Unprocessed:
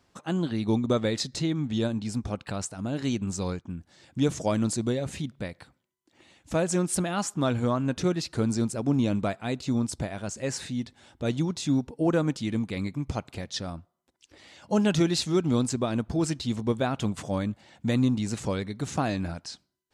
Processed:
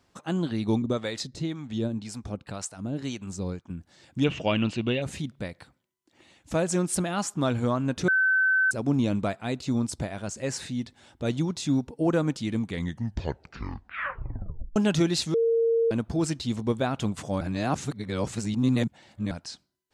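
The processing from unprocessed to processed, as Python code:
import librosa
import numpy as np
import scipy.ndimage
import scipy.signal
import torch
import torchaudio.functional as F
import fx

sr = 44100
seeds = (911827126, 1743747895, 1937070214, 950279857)

y = fx.harmonic_tremolo(x, sr, hz=1.9, depth_pct=70, crossover_hz=560.0, at=(0.82, 3.7))
y = fx.lowpass_res(y, sr, hz=2800.0, q=14.0, at=(4.24, 5.02))
y = fx.edit(y, sr, fx.bleep(start_s=8.08, length_s=0.63, hz=1530.0, db=-19.0),
    fx.tape_stop(start_s=12.6, length_s=2.16),
    fx.bleep(start_s=15.34, length_s=0.57, hz=459.0, db=-19.5),
    fx.reverse_span(start_s=17.41, length_s=1.9), tone=tone)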